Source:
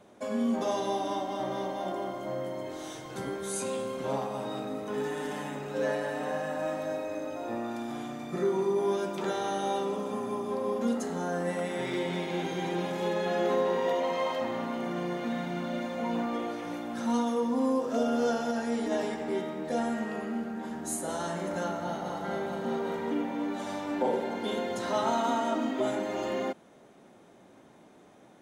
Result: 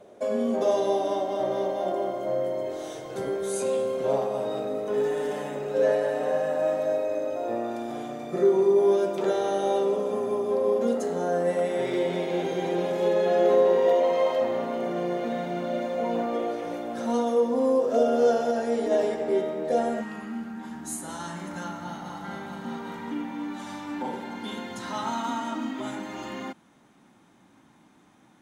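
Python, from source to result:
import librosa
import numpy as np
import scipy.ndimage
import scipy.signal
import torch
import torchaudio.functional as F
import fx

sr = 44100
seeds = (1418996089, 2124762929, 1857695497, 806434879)

y = fx.band_shelf(x, sr, hz=510.0, db=fx.steps((0.0, 8.5), (20.0, -9.5)), octaves=1.1)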